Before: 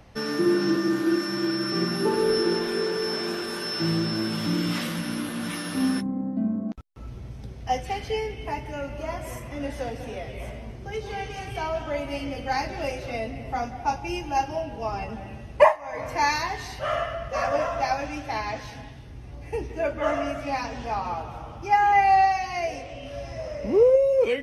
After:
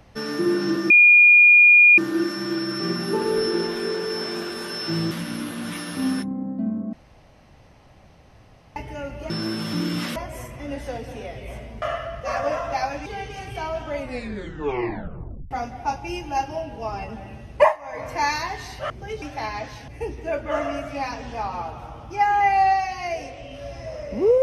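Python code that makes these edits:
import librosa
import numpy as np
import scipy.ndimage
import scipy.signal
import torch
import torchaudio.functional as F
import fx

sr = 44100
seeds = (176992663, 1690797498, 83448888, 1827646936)

y = fx.edit(x, sr, fx.insert_tone(at_s=0.9, length_s=1.08, hz=2430.0, db=-8.5),
    fx.move(start_s=4.03, length_s=0.86, to_s=9.08),
    fx.room_tone_fill(start_s=6.71, length_s=1.83),
    fx.swap(start_s=10.74, length_s=0.32, other_s=16.9, other_length_s=1.24),
    fx.tape_stop(start_s=11.96, length_s=1.55),
    fx.cut(start_s=18.8, length_s=0.6), tone=tone)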